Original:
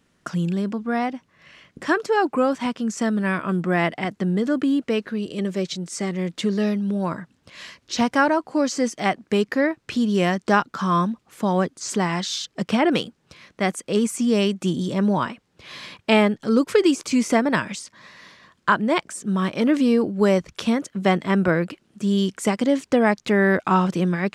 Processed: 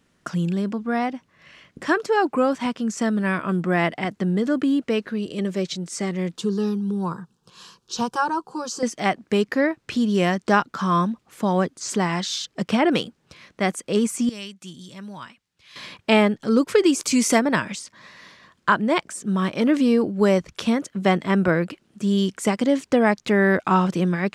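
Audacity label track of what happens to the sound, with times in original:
6.370000	8.830000	fixed phaser centre 410 Hz, stages 8
14.290000	15.760000	passive tone stack bass-middle-treble 5-5-5
16.940000	17.380000	high shelf 6300 Hz -> 3400 Hz +11.5 dB

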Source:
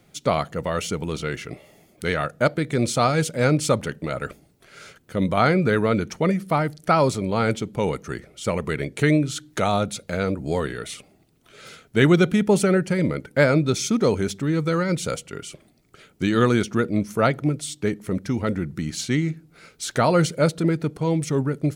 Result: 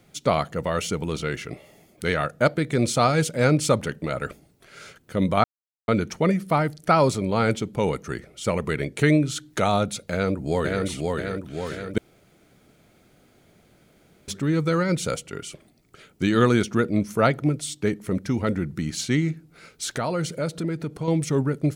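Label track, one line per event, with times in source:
5.440000	5.880000	mute
10.110000	10.850000	echo throw 0.53 s, feedback 60%, level -2.5 dB
11.980000	14.280000	room tone
19.910000	21.080000	compressor 2:1, threshold -28 dBFS

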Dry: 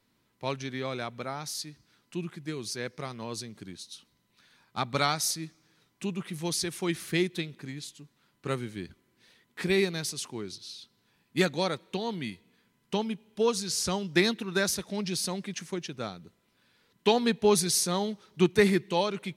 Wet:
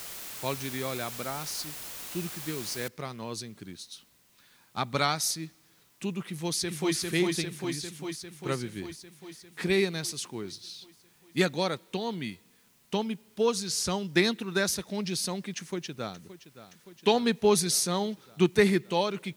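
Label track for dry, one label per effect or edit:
2.880000	2.880000	noise floor step -41 dB -65 dB
6.280000	6.950000	echo throw 0.4 s, feedback 70%, level -2 dB
15.570000	16.180000	echo throw 0.57 s, feedback 75%, level -14.5 dB

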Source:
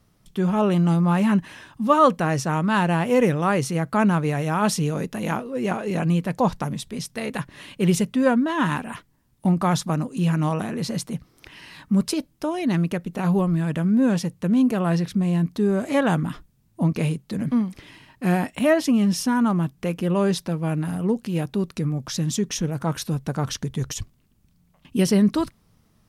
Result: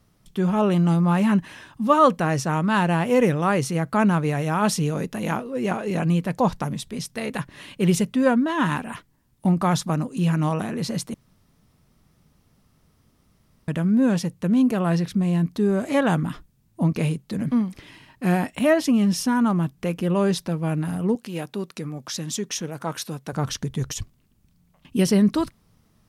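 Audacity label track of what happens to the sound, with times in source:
11.140000	13.680000	room tone
21.150000	23.330000	HPF 390 Hz 6 dB/oct

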